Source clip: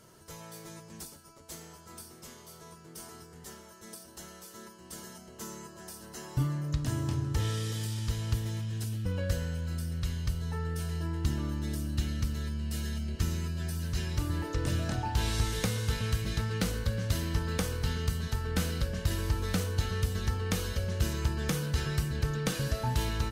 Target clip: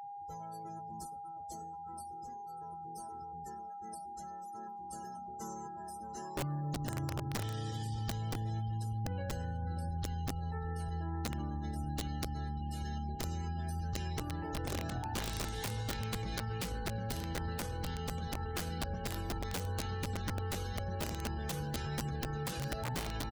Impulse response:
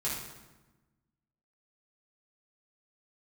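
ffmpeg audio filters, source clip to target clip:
-af "aecho=1:1:592|1184|1776:0.266|0.0878|0.029,afftdn=noise_reduction=33:noise_floor=-44,aeval=exprs='(mod(13.3*val(0)+1,2)-1)/13.3':channel_layout=same,aeval=exprs='val(0)+0.00891*sin(2*PI*810*n/s)':channel_layout=same,alimiter=level_in=4.5dB:limit=-24dB:level=0:latency=1:release=66,volume=-4.5dB,volume=-2dB"

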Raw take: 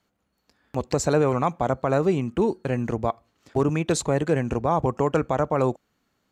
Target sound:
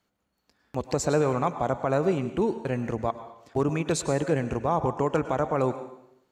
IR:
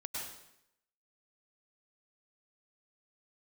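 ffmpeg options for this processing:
-filter_complex "[0:a]asplit=2[link_01][link_02];[link_02]equalizer=frequency=65:width=0.66:gain=-13.5[link_03];[1:a]atrim=start_sample=2205[link_04];[link_03][link_04]afir=irnorm=-1:irlink=0,volume=-8dB[link_05];[link_01][link_05]amix=inputs=2:normalize=0,volume=-4.5dB"

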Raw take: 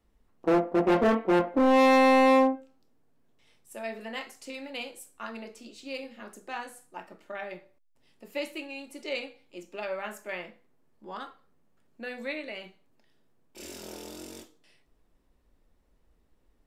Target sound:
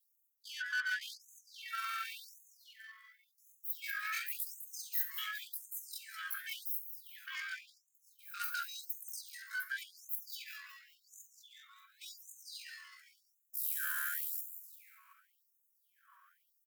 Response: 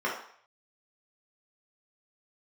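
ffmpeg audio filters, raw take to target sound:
-filter_complex "[0:a]afftfilt=real='real(if(lt(b,1008),b+24*(1-2*mod(floor(b/24),2)),b),0)':imag='imag(if(lt(b,1008),b+24*(1-2*mod(floor(b/24),2)),b),0)':win_size=2048:overlap=0.75,equalizer=frequency=2600:width_type=o:width=0.92:gain=-10.5,aecho=1:1:2.2:0.74,areverse,acompressor=threshold=-30dB:ratio=16,areverse,asoftclip=type=tanh:threshold=-35dB,flanger=delay=2.7:depth=8.7:regen=-67:speed=1.1:shape=sinusoidal,aexciter=amount=4.8:drive=2.6:freq=6900,asplit=2[link_01][link_02];[link_02]asplit=4[link_03][link_04][link_05][link_06];[link_03]adelay=190,afreqshift=120,volume=-9.5dB[link_07];[link_04]adelay=380,afreqshift=240,volume=-17.2dB[link_08];[link_05]adelay=570,afreqshift=360,volume=-25dB[link_09];[link_06]adelay=760,afreqshift=480,volume=-32.7dB[link_10];[link_07][link_08][link_09][link_10]amix=inputs=4:normalize=0[link_11];[link_01][link_11]amix=inputs=2:normalize=0,asetrate=76340,aresample=44100,atempo=0.577676,afftfilt=real='re*gte(b*sr/1024,970*pow(6300/970,0.5+0.5*sin(2*PI*0.91*pts/sr)))':imag='im*gte(b*sr/1024,970*pow(6300/970,0.5+0.5*sin(2*PI*0.91*pts/sr)))':win_size=1024:overlap=0.75,volume=8dB"

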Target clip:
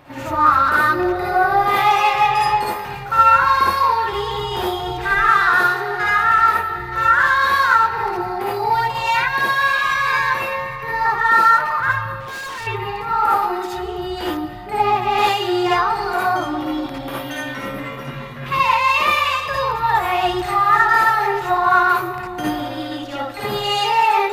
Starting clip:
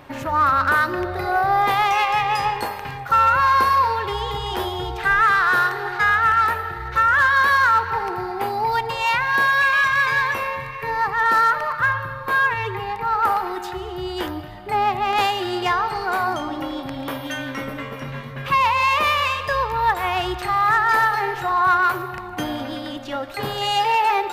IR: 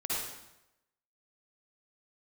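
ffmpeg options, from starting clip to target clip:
-filter_complex "[1:a]atrim=start_sample=2205,atrim=end_sample=3969[link_01];[0:a][link_01]afir=irnorm=-1:irlink=0,asettb=1/sr,asplit=3[link_02][link_03][link_04];[link_02]atrim=end=12.204[link_05];[link_03]atrim=start=12.2:end=12.67,asetpts=PTS-STARTPTS,afade=type=in:duration=0.004:curve=qsin,afade=type=out:start_time=0.466:duration=0.004:curve=qsin,volume=28dB,asoftclip=hard,volume=-28dB[link_06];[link_04]atrim=start=12.666[link_07];[link_05][link_06]acrossfade=duration=0.004:curve1=hsin:curve2=qsin[link_08];[link_08][link_07]acrossfade=duration=0.004:curve1=qsin:curve2=hsin"

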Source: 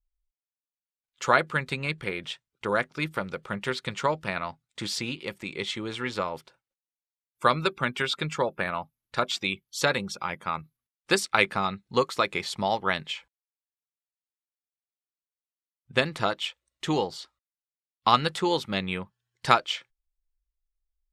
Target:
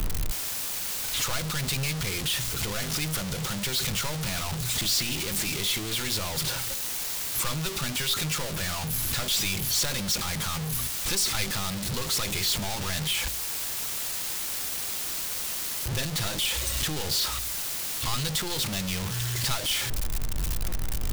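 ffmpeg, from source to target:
ffmpeg -i in.wav -filter_complex "[0:a]aeval=exprs='val(0)+0.5*0.141*sgn(val(0))':channel_layout=same,bandreject=frequency=57.05:width_type=h:width=4,bandreject=frequency=114.1:width_type=h:width=4,bandreject=frequency=171.15:width_type=h:width=4,bandreject=frequency=228.2:width_type=h:width=4,bandreject=frequency=285.25:width_type=h:width=4,bandreject=frequency=342.3:width_type=h:width=4,bandreject=frequency=399.35:width_type=h:width=4,bandreject=frequency=456.4:width_type=h:width=4,bandreject=frequency=513.45:width_type=h:width=4,bandreject=frequency=570.5:width_type=h:width=4,bandreject=frequency=627.55:width_type=h:width=4,aeval=exprs='clip(val(0),-1,0.0891)':channel_layout=same,acrossover=split=130|3000[link_01][link_02][link_03];[link_02]acompressor=threshold=-42dB:ratio=2[link_04];[link_01][link_04][link_03]amix=inputs=3:normalize=0,acrusher=bits=3:mode=log:mix=0:aa=0.000001,volume=-2.5dB" out.wav

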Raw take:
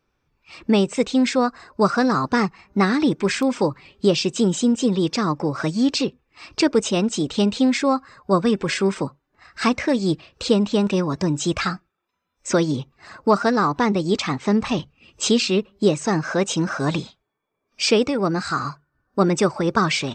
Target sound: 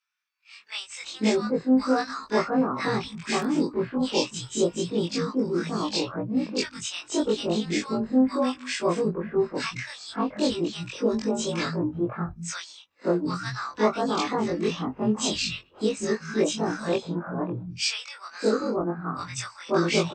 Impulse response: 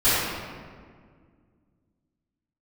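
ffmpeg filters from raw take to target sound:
-filter_complex "[0:a]afftfilt=real='re':imag='-im':win_size=2048:overlap=0.75,acrossover=split=170|1300[link_01][link_02][link_03];[link_02]adelay=540[link_04];[link_01]adelay=730[link_05];[link_05][link_04][link_03]amix=inputs=3:normalize=0"

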